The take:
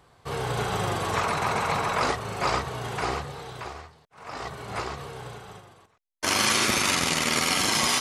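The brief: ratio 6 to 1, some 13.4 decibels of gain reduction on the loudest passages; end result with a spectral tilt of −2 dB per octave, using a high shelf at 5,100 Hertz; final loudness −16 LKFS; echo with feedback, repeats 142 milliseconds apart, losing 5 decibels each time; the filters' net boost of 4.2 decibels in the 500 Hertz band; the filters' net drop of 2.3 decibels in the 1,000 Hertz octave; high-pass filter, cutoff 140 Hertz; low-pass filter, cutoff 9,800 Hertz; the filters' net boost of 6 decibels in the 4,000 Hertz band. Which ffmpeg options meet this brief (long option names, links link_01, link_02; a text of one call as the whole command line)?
ffmpeg -i in.wav -af "highpass=140,lowpass=9800,equalizer=frequency=500:width_type=o:gain=6.5,equalizer=frequency=1000:width_type=o:gain=-5.5,equalizer=frequency=4000:width_type=o:gain=4.5,highshelf=frequency=5100:gain=7.5,acompressor=threshold=-31dB:ratio=6,aecho=1:1:142|284|426|568|710|852|994:0.562|0.315|0.176|0.0988|0.0553|0.031|0.0173,volume=16dB" out.wav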